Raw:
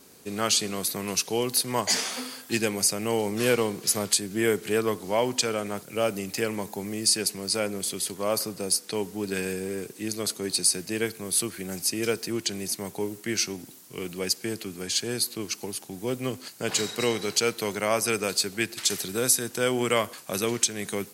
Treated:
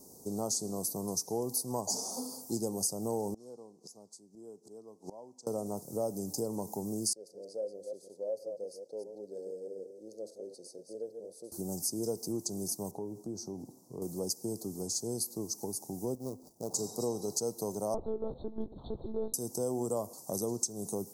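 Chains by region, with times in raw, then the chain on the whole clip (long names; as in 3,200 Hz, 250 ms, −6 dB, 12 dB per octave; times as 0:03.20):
0:03.34–0:05.47: band-pass filter 170–7,000 Hz + gate with flip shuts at −28 dBFS, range −24 dB
0:07.13–0:11.52: delay that plays each chunk backwards 159 ms, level −7 dB + formant filter e
0:12.91–0:14.02: low-pass filter 1,700 Hz 6 dB per octave + downward compressor 2 to 1, threshold −38 dBFS
0:16.15–0:16.74: running median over 41 samples + spectral tilt +2.5 dB per octave
0:17.94–0:19.34: one-pitch LPC vocoder at 8 kHz 220 Hz + hard clipping −13.5 dBFS
whole clip: elliptic band-stop filter 880–5,500 Hz, stop band 60 dB; downward compressor 2 to 1, threshold −35 dBFS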